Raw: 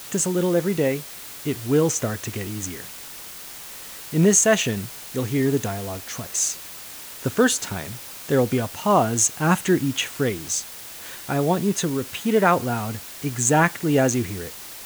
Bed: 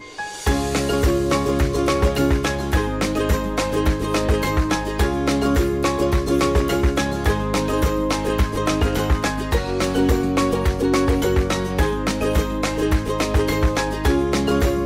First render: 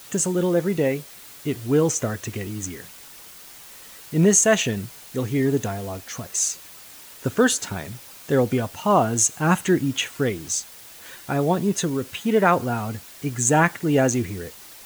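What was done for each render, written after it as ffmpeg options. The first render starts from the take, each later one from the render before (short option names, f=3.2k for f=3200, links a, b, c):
-af "afftdn=nr=6:nf=-39"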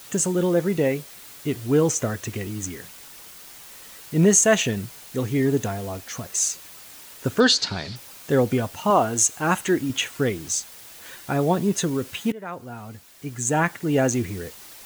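-filter_complex "[0:a]asettb=1/sr,asplit=3[a][b][c];[a]atrim=end=7.404[d];[b]atrim=start=7.4:end=7.96,asetpts=PTS-STARTPTS,afade=t=in:d=0.004:c=qsin,afade=t=out:st=0.556:d=0.004:c=qsin,lowpass=f=4.5k:t=q:w=6.7[e];[c]atrim=start=7.956[f];[d][e]acrossfade=d=0.004:c1=hsin:c2=qsin[g];[g][f]acrossfade=d=0.004:c1=qsin:c2=hsin,asettb=1/sr,asplit=3[h][i][j];[h]atrim=end=8.904[k];[i]atrim=start=8.9:end=9.9,asetpts=PTS-STARTPTS,afade=t=in:d=0.004:c=qsin,afade=t=out:st=0.996:d=0.004:c=qsin,equalizer=f=150:t=o:w=1.2:g=-7.5[l];[j]atrim=start=9.896[m];[k][l]acrossfade=d=0.004:c1=hsin:c2=qsin[n];[n][m]acrossfade=d=0.004:c1=qsin:c2=hsin,asplit=2[o][p];[o]atrim=end=12.32,asetpts=PTS-STARTPTS,afade=t=out:st=12.316:d=0.004:c=hsin:silence=0.0749894[q];[p]atrim=start=12.32,asetpts=PTS-STARTPTS,afade=t=in:d=2.04:silence=0.0749894[r];[q][r]concat=n=2:v=0:a=1"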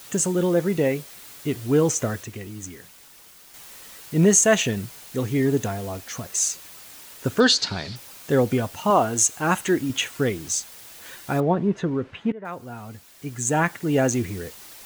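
-filter_complex "[0:a]asettb=1/sr,asplit=3[a][b][c];[a]atrim=end=11.404[d];[b]atrim=start=11.4:end=12.45,asetpts=PTS-STARTPTS,afade=t=in:d=0.004:c=qsin,afade=t=out:st=1.046:d=0.004:c=qsin,lowpass=1.9k[e];[c]atrim=start=12.446[f];[d][e]acrossfade=d=0.004:c1=hsin:c2=qsin[g];[g][f]acrossfade=d=0.004:c1=qsin:c2=hsin,asplit=3[h][i][j];[h]atrim=end=2.232[k];[i]atrim=start=2.228:end=3.542,asetpts=PTS-STARTPTS,volume=-5.5dB[l];[j]atrim=start=3.538[m];[k][l]acrossfade=d=0.004:c1=hsin:c2=hsin[n];[n][m]acrossfade=d=0.004:c1=hsin:c2=hsin"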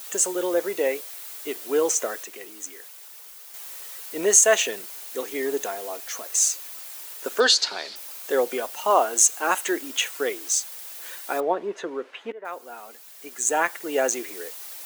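-af "highpass=f=390:w=0.5412,highpass=f=390:w=1.3066,highshelf=f=9.3k:g=7.5"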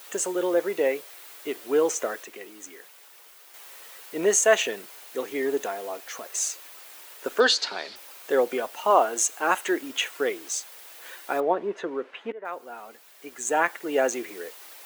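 -af "bass=f=250:g=3,treble=f=4k:g=-8"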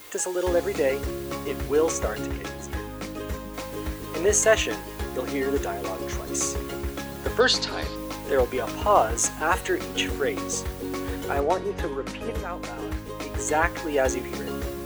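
-filter_complex "[1:a]volume=-13dB[a];[0:a][a]amix=inputs=2:normalize=0"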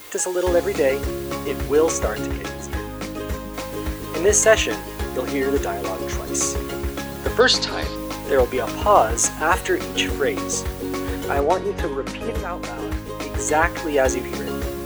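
-af "volume=4.5dB,alimiter=limit=-2dB:level=0:latency=1"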